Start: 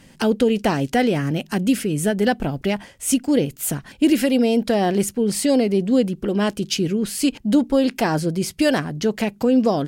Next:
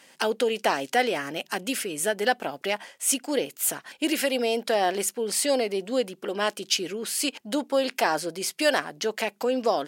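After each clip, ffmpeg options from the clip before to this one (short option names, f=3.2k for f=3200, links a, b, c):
-af "highpass=570"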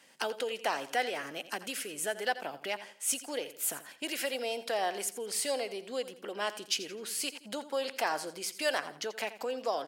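-filter_complex "[0:a]aecho=1:1:85|170|255:0.188|0.0603|0.0193,acrossover=split=450|1300|2400[a][b][c][d];[a]acompressor=threshold=-39dB:ratio=6[e];[e][b][c][d]amix=inputs=4:normalize=0,volume=-7dB"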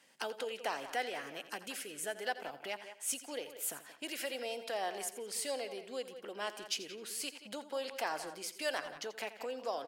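-filter_complex "[0:a]asplit=2[a][b];[b]adelay=180,highpass=300,lowpass=3.4k,asoftclip=type=hard:threshold=-26dB,volume=-11dB[c];[a][c]amix=inputs=2:normalize=0,volume=-5.5dB"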